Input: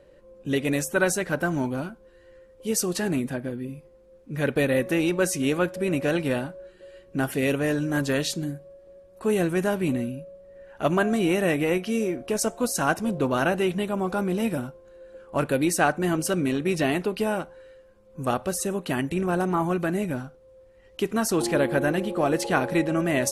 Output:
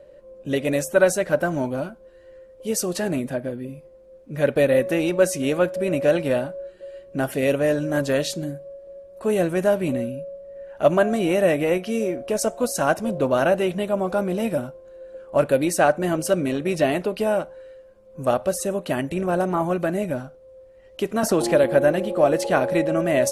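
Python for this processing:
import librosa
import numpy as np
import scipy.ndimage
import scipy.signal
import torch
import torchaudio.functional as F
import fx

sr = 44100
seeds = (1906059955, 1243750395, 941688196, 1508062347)

y = fx.peak_eq(x, sr, hz=590.0, db=10.5, octaves=0.41)
y = fx.band_squash(y, sr, depth_pct=70, at=(21.23, 21.64))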